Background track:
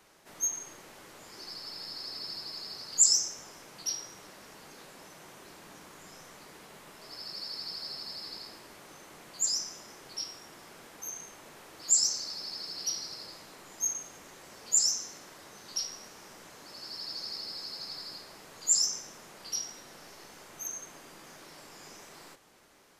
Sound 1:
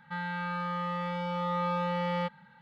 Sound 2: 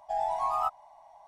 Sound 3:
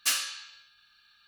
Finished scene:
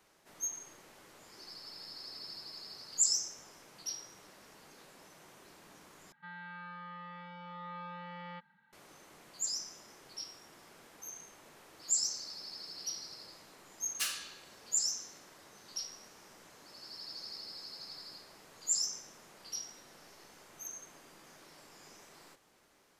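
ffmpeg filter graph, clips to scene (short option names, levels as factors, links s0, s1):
-filter_complex "[0:a]volume=0.473[s0];[1:a]highpass=190,equalizer=f=400:t=q:w=4:g=-4,equalizer=f=570:t=q:w=4:g=-9,equalizer=f=1700:t=q:w=4:g=5,lowpass=f=5000:w=0.5412,lowpass=f=5000:w=1.3066[s1];[s0]asplit=2[s2][s3];[s2]atrim=end=6.124[s4];[s1]atrim=end=2.61,asetpts=PTS-STARTPTS,volume=0.224[s5];[s3]atrim=start=8.726[s6];[3:a]atrim=end=1.27,asetpts=PTS-STARTPTS,volume=0.376,afade=t=in:d=0.004:c=hsin,afade=t=out:st=1.266:d=0.004:c=hsin,adelay=13940[s7];[s4][s5]acrossfade=d=0.004:c1=hsin:c2=hsin[s8];[s8][s6]acrossfade=d=0.004:c1=hsin:c2=hsin[s9];[s9][s7]amix=inputs=2:normalize=0"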